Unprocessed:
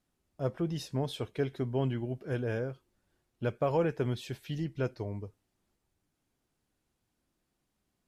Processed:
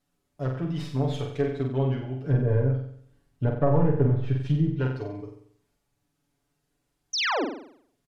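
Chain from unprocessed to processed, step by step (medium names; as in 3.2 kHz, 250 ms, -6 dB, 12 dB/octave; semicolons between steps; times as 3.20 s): tracing distortion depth 0.16 ms; 2.23–4.73 s: bass shelf 240 Hz +11.5 dB; low-pass that closes with the level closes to 1.1 kHz, closed at -23 dBFS; comb 7 ms, depth 83%; 7.13–7.45 s: painted sound fall 230–6500 Hz -27 dBFS; flutter echo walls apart 7.9 m, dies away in 0.62 s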